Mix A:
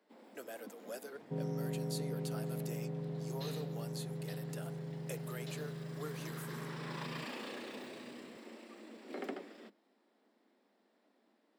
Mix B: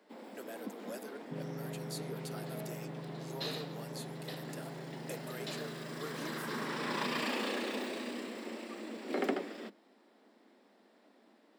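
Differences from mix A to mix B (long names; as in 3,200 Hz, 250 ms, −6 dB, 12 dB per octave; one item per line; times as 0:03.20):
first sound +9.0 dB
second sound −4.5 dB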